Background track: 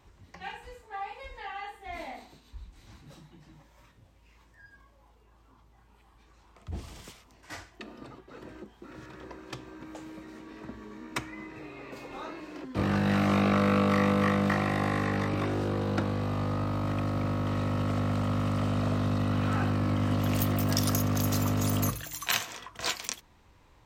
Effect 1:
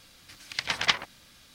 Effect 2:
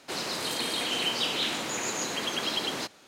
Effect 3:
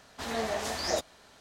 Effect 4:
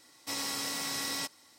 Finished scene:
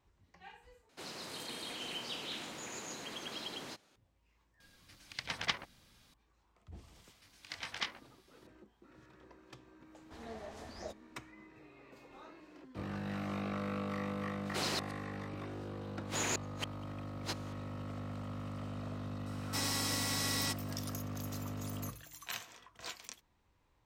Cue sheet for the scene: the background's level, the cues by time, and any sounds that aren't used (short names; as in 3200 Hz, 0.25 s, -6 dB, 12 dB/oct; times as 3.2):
background track -14 dB
0.89 replace with 2 -13.5 dB + low shelf 140 Hz +7 dB
4.6 add 1 -11 dB + low shelf 440 Hz +6.5 dB
6.93 add 1 -15 dB + doubler 21 ms -6 dB
9.92 add 3 -16.5 dB + tilt -2 dB/oct
14.46 add 2 -3 dB + flipped gate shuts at -21 dBFS, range -42 dB
19.26 add 4 -1 dB